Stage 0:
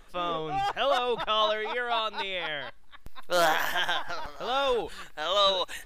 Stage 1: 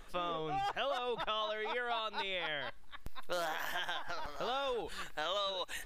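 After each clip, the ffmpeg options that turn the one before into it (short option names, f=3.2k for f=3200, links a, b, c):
-af "acompressor=threshold=-34dB:ratio=6"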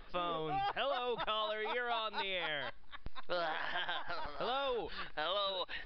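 -af "aresample=11025,aresample=44100"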